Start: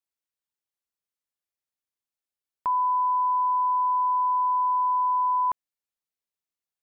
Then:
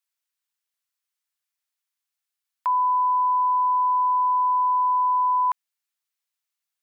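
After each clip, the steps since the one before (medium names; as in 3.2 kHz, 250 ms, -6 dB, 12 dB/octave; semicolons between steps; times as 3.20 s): high-pass 1.1 kHz; trim +6.5 dB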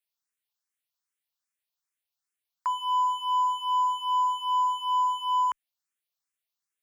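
overload inside the chain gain 21.5 dB; barber-pole phaser +2.5 Hz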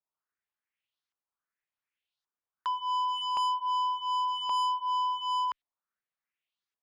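LFO low-pass saw up 0.89 Hz 940–4100 Hz; saturation -24.5 dBFS, distortion -9 dB; trim -2 dB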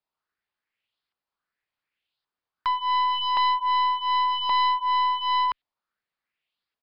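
tracing distortion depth 0.063 ms; resampled via 11.025 kHz; trim +6.5 dB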